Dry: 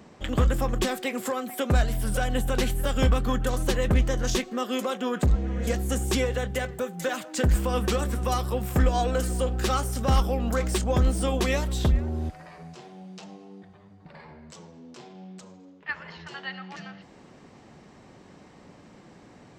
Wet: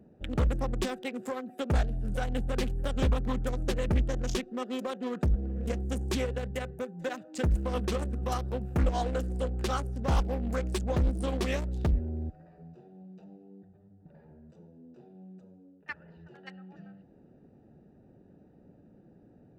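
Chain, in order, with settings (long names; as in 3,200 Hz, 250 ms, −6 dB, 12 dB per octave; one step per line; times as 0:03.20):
adaptive Wiener filter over 41 samples
highs frequency-modulated by the lows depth 0.41 ms
level −4.5 dB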